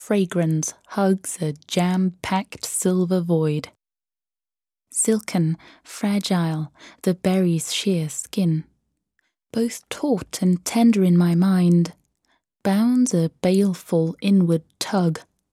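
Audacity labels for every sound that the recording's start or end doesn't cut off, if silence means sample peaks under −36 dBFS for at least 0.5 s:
4.920000	8.610000	sound
9.540000	11.930000	sound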